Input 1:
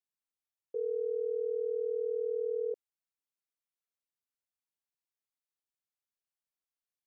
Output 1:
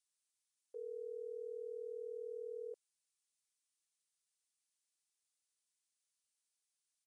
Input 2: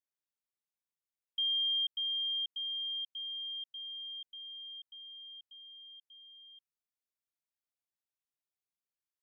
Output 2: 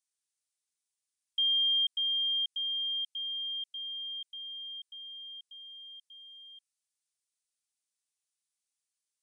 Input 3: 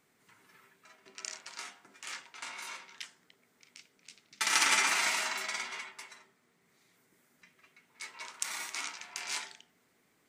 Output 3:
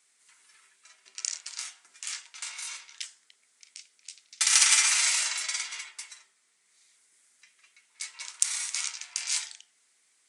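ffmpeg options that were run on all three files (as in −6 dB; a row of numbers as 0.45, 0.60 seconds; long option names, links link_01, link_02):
-af "aresample=22050,aresample=44100,aderivative,acontrast=71,volume=4.5dB"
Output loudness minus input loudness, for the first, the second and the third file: −12.5, +4.5, +6.5 LU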